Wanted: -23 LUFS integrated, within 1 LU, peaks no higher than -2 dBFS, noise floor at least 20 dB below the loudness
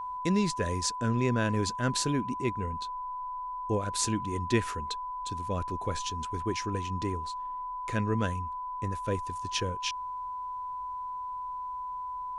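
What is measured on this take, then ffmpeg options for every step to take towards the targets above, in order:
steady tone 1 kHz; tone level -34 dBFS; loudness -32.0 LUFS; peak level -12.0 dBFS; loudness target -23.0 LUFS
-> -af "bandreject=f=1000:w=30"
-af "volume=2.82"

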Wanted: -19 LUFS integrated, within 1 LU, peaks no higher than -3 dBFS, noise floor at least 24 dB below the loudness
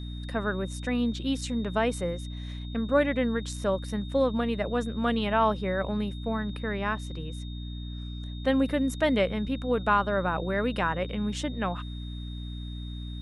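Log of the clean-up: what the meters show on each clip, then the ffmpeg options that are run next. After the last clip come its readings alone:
hum 60 Hz; highest harmonic 300 Hz; hum level -34 dBFS; steady tone 3.7 kHz; tone level -47 dBFS; loudness -29.0 LUFS; peak level -11.0 dBFS; loudness target -19.0 LUFS
-> -af "bandreject=f=60:t=h:w=4,bandreject=f=120:t=h:w=4,bandreject=f=180:t=h:w=4,bandreject=f=240:t=h:w=4,bandreject=f=300:t=h:w=4"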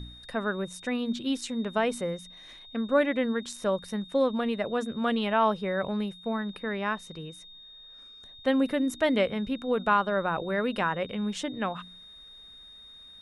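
hum not found; steady tone 3.7 kHz; tone level -47 dBFS
-> -af "bandreject=f=3700:w=30"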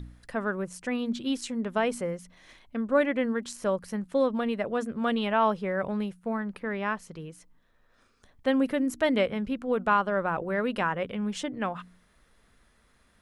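steady tone not found; loudness -29.0 LUFS; peak level -11.5 dBFS; loudness target -19.0 LUFS
-> -af "volume=3.16,alimiter=limit=0.708:level=0:latency=1"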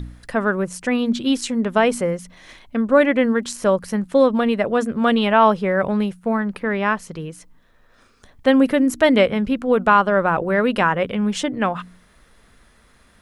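loudness -19.0 LUFS; peak level -3.0 dBFS; noise floor -55 dBFS

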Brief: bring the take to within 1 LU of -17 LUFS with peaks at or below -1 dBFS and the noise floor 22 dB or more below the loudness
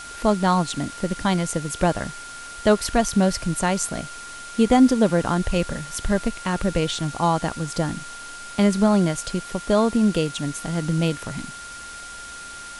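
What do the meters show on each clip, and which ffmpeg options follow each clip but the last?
steady tone 1.4 kHz; tone level -37 dBFS; noise floor -38 dBFS; noise floor target -45 dBFS; loudness -22.5 LUFS; peak level -4.0 dBFS; loudness target -17.0 LUFS
-> -af "bandreject=f=1400:w=30"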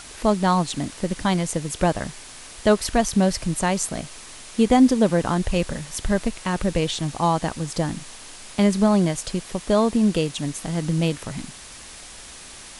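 steady tone not found; noise floor -41 dBFS; noise floor target -45 dBFS
-> -af "afftdn=nr=6:nf=-41"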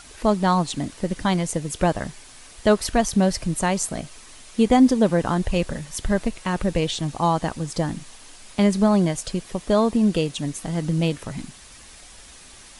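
noise floor -46 dBFS; loudness -22.5 LUFS; peak level -4.0 dBFS; loudness target -17.0 LUFS
-> -af "volume=1.88,alimiter=limit=0.891:level=0:latency=1"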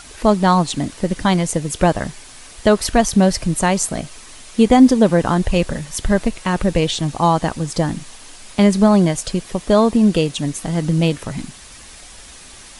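loudness -17.0 LUFS; peak level -1.0 dBFS; noise floor -40 dBFS

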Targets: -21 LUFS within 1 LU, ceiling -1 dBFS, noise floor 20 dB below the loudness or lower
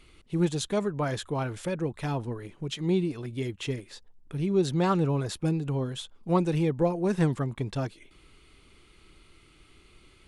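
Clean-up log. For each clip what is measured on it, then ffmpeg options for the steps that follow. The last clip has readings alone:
loudness -29.0 LUFS; peak level -12.5 dBFS; loudness target -21.0 LUFS
-> -af "volume=2.51"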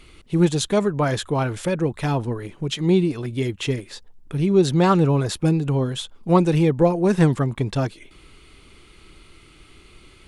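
loudness -21.0 LUFS; peak level -4.5 dBFS; noise floor -50 dBFS

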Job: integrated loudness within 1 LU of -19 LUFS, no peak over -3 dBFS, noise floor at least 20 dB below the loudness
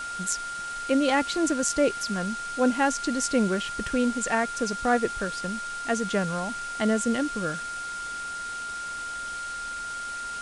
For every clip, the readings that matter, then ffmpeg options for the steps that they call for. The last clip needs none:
steady tone 1.4 kHz; tone level -32 dBFS; noise floor -35 dBFS; noise floor target -48 dBFS; loudness -27.5 LUFS; peak level -10.0 dBFS; loudness target -19.0 LUFS
-> -af "bandreject=f=1400:w=30"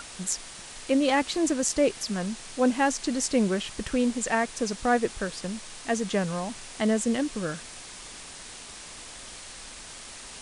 steady tone not found; noise floor -43 dBFS; noise floor target -47 dBFS
-> -af "afftdn=nr=6:nf=-43"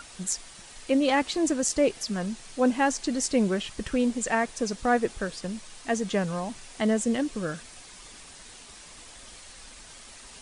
noise floor -48 dBFS; loudness -27.5 LUFS; peak level -9.5 dBFS; loudness target -19.0 LUFS
-> -af "volume=2.66,alimiter=limit=0.708:level=0:latency=1"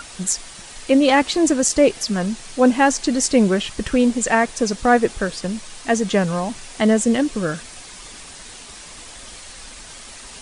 loudness -19.0 LUFS; peak level -3.0 dBFS; noise floor -39 dBFS

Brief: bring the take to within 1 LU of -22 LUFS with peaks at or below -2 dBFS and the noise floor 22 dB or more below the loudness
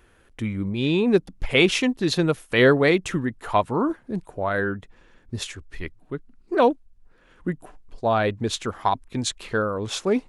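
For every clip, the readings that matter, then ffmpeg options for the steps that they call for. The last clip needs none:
loudness -23.5 LUFS; peak level -4.0 dBFS; loudness target -22.0 LUFS
-> -af "volume=1.19"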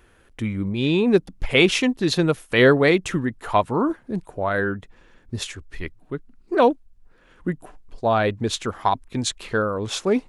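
loudness -22.0 LUFS; peak level -2.5 dBFS; noise floor -56 dBFS

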